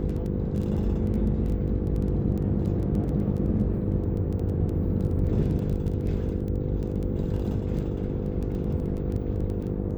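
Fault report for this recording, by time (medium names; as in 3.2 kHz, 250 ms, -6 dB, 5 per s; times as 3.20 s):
buzz 50 Hz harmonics 10 -31 dBFS
crackle 11 per s -31 dBFS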